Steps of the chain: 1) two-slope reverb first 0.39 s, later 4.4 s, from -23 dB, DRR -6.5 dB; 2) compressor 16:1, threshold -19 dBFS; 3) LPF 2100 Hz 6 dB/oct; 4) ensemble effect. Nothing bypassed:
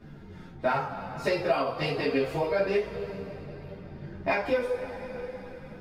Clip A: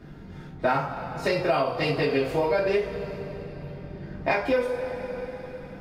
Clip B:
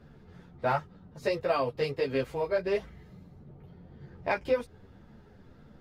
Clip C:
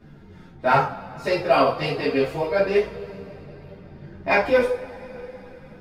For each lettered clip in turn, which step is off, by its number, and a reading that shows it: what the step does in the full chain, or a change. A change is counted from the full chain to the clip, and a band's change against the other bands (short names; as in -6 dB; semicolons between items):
4, momentary loudness spread change -1 LU; 1, 500 Hz band +2.0 dB; 2, mean gain reduction 2.5 dB